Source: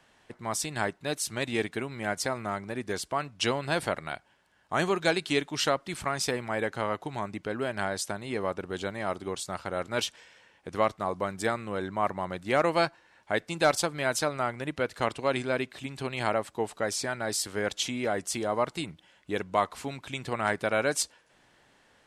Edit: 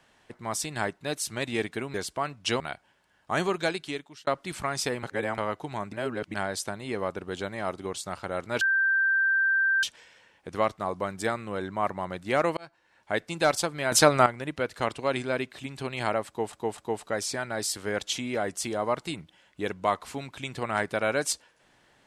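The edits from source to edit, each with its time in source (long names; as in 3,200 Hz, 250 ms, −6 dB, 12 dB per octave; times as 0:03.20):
0:01.94–0:02.89: remove
0:03.55–0:04.02: remove
0:04.90–0:05.69: fade out
0:06.45–0:06.80: reverse
0:07.35–0:07.76: reverse
0:10.03: insert tone 1,570 Hz −20.5 dBFS 1.22 s
0:12.77–0:13.33: fade in
0:14.12–0:14.46: clip gain +10 dB
0:16.48–0:16.73: repeat, 3 plays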